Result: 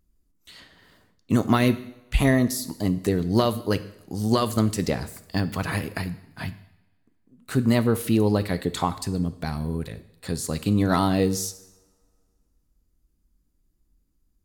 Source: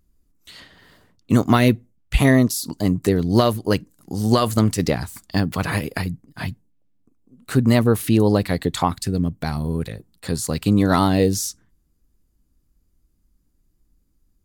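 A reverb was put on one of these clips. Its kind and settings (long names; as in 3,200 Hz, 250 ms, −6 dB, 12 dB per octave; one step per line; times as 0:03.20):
coupled-rooms reverb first 0.76 s, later 2.3 s, from −24 dB, DRR 11 dB
level −4.5 dB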